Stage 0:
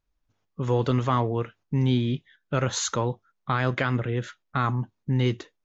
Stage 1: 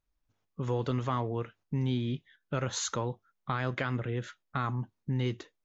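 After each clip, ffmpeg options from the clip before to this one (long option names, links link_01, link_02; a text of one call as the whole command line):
ffmpeg -i in.wav -af "acompressor=threshold=-28dB:ratio=1.5,volume=-4dB" out.wav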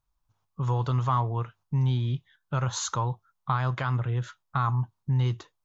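ffmpeg -i in.wav -af "equalizer=frequency=125:width_type=o:width=1:gain=7,equalizer=frequency=250:width_type=o:width=1:gain=-8,equalizer=frequency=500:width_type=o:width=1:gain=-6,equalizer=frequency=1000:width_type=o:width=1:gain=9,equalizer=frequency=2000:width_type=o:width=1:gain=-7,volume=2.5dB" out.wav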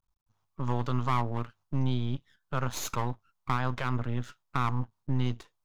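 ffmpeg -i in.wav -af "aeval=exprs='max(val(0),0)':channel_layout=same" out.wav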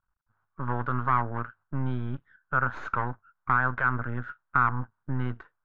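ffmpeg -i in.wav -af "lowpass=frequency=1500:width_type=q:width=6.7,volume=-1.5dB" out.wav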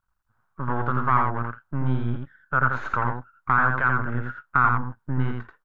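ffmpeg -i in.wav -af "aecho=1:1:85:0.631,volume=3dB" out.wav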